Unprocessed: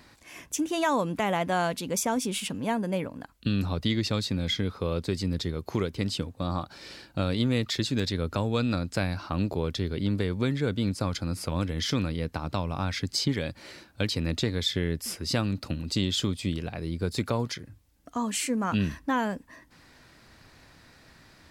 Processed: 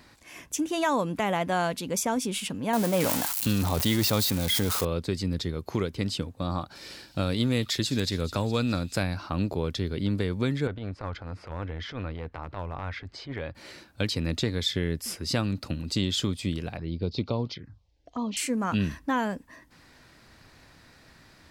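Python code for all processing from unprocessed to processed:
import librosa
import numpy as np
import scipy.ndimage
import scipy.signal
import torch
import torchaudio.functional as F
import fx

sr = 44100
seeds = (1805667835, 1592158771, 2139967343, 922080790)

y = fx.chain(x, sr, fx.crossing_spikes(level_db=-22.0),
    fx.peak_eq(hz=800.0, db=7.0, octaves=1.2),
    fx.sustainer(db_per_s=22.0), at=(2.73, 4.85))
y = fx.chain(y, sr, fx.high_shelf(hz=9200.0, db=10.5),
    fx.echo_wet_highpass(ms=209, feedback_pct=65, hz=3200.0, wet_db=-13.0), at=(6.75, 9.03))
y = fx.chain(y, sr, fx.lowpass(hz=1900.0, slope=12),
    fx.transient(attack_db=-11, sustain_db=2),
    fx.peak_eq(hz=200.0, db=-9.5, octaves=1.5), at=(10.67, 13.55))
y = fx.chain(y, sr, fx.lowpass(hz=5100.0, slope=24),
    fx.env_phaser(low_hz=180.0, high_hz=1700.0, full_db=-27.5), at=(16.77, 18.37))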